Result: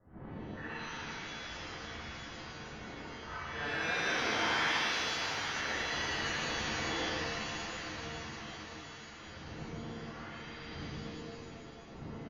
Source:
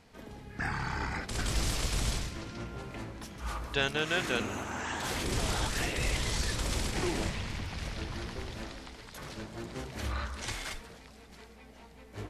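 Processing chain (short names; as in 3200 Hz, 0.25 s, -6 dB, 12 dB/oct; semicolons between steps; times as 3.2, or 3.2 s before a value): Doppler pass-by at 5.01, 19 m/s, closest 2.3 m; wind noise 140 Hz -60 dBFS; in parallel at -7 dB: sine folder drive 17 dB, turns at -20 dBFS; on the sum: negative-ratio compressor -36 dBFS, ratio -1; Chebyshev low-pass 2000 Hz, order 10; tilt +4 dB/oct; soft clip -27 dBFS, distortion -25 dB; feedback echo 0.736 s, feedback 57%, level -11.5 dB; shimmer reverb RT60 1.9 s, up +7 st, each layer -2 dB, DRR -9 dB; gain -5.5 dB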